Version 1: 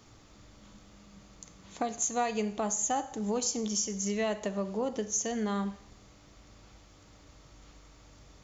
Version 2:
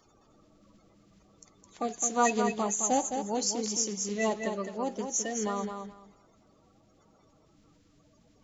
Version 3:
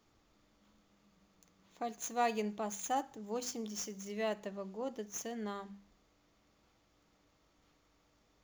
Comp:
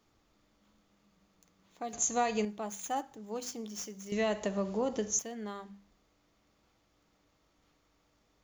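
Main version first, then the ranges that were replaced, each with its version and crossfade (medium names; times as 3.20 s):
3
1.93–2.45 s: from 1
4.12–5.19 s: from 1
not used: 2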